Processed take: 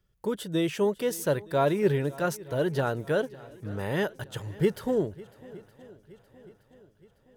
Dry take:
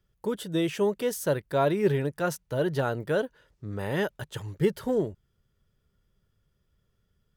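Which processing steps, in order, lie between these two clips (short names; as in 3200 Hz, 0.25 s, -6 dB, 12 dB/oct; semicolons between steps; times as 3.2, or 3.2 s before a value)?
swung echo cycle 0.919 s, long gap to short 1.5:1, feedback 47%, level -21 dB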